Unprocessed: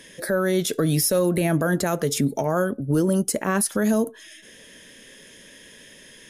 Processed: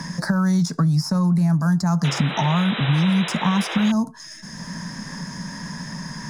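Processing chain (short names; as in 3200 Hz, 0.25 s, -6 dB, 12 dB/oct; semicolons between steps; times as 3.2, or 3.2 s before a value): median filter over 3 samples; EQ curve 100 Hz 0 dB, 170 Hz +15 dB, 340 Hz -11 dB, 480 Hz -17 dB, 940 Hz +10 dB, 3200 Hz -19 dB, 4900 Hz +9 dB, 13000 Hz -13 dB; compressor, threshold -16 dBFS, peak gain reduction 9 dB; painted sound noise, 2.04–3.92, 310–4000 Hz -30 dBFS; three-band squash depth 70%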